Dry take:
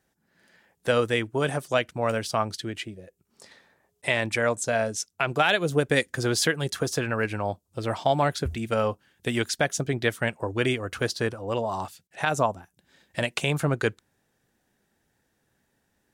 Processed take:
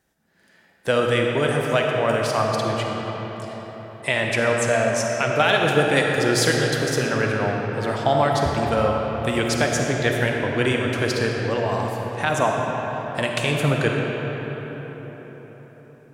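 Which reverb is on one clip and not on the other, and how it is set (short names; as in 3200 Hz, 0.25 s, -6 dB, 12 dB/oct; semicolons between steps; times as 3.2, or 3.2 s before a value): digital reverb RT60 4.9 s, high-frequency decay 0.55×, pre-delay 10 ms, DRR -0.5 dB; gain +2 dB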